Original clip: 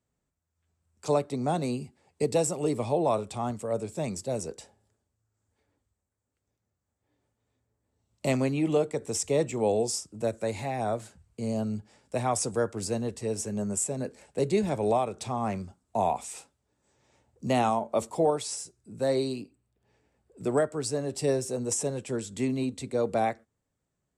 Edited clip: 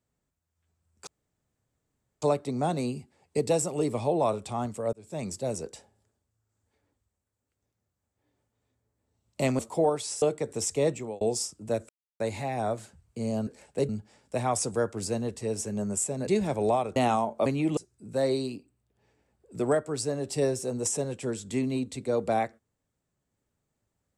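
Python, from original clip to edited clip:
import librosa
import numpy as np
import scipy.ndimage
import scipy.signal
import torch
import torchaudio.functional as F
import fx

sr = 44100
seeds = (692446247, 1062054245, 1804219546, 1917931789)

y = fx.edit(x, sr, fx.insert_room_tone(at_s=1.07, length_s=1.15),
    fx.fade_in_span(start_s=3.78, length_s=0.36),
    fx.swap(start_s=8.44, length_s=0.31, other_s=18.0, other_length_s=0.63),
    fx.fade_out_span(start_s=9.42, length_s=0.32),
    fx.insert_silence(at_s=10.42, length_s=0.31),
    fx.move(start_s=14.07, length_s=0.42, to_s=11.69),
    fx.cut(start_s=15.18, length_s=2.32), tone=tone)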